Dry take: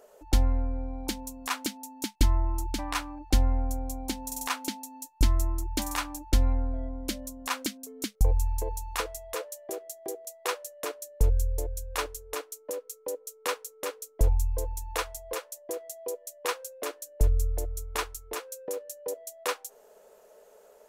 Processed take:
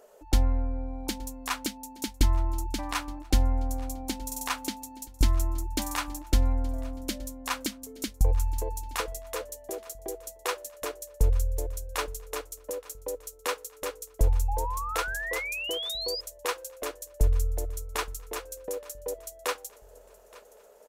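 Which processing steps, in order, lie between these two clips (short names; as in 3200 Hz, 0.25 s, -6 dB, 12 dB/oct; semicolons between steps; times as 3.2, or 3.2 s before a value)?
feedback echo 0.871 s, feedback 45%, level -21.5 dB; painted sound rise, 14.48–16.21, 790–5100 Hz -34 dBFS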